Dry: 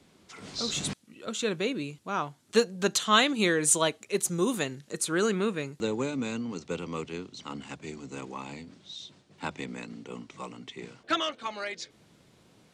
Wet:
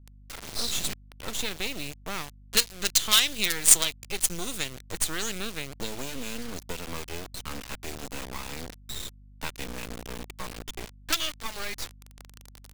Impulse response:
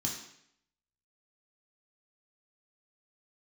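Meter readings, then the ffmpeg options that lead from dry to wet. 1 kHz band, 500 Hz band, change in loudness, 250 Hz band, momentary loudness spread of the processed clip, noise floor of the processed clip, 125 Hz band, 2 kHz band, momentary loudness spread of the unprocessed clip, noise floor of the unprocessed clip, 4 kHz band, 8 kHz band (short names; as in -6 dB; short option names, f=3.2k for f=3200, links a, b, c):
-6.0 dB, -9.5 dB, +1.5 dB, -8.0 dB, 19 LU, -51 dBFS, -3.0 dB, -0.5 dB, 19 LU, -62 dBFS, +4.5 dB, +6.0 dB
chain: -filter_complex "[0:a]lowshelf=f=370:g=-4.5,areverse,acompressor=mode=upward:threshold=-39dB:ratio=2.5,areverse,acrusher=bits=4:dc=4:mix=0:aa=0.000001,acrossover=split=2200[a][b];[a]acompressor=threshold=-40dB:ratio=6[c];[c][b]amix=inputs=2:normalize=0,aeval=exprs='val(0)+0.000891*(sin(2*PI*50*n/s)+sin(2*PI*2*50*n/s)/2+sin(2*PI*3*50*n/s)/3+sin(2*PI*4*50*n/s)/4+sin(2*PI*5*50*n/s)/5)':c=same,lowshelf=f=89:g=6.5,volume=7dB"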